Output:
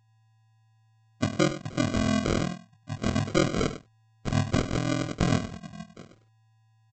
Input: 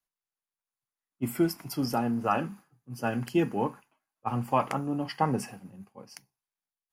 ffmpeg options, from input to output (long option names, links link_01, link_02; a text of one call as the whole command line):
ffmpeg -i in.wav -filter_complex "[0:a]asplit=2[link_01][link_02];[link_02]asoftclip=type=hard:threshold=-24dB,volume=-8dB[link_03];[link_01][link_03]amix=inputs=2:normalize=0,equalizer=frequency=3200:width_type=o:width=0.55:gain=14.5,afftfilt=real='re*gte(hypot(re,im),0.0112)':imag='im*gte(hypot(re,im),0.0112)':win_size=1024:overlap=0.75,aeval=exprs='val(0)*sin(2*PI*21*n/s)':channel_layout=same,aeval=exprs='val(0)+0.000794*sin(2*PI*1000*n/s)':channel_layout=same,bass=frequency=250:gain=7,treble=frequency=4000:gain=-8,aresample=16000,acrusher=samples=18:mix=1:aa=0.000001,aresample=44100,aecho=1:1:99:0.224" out.wav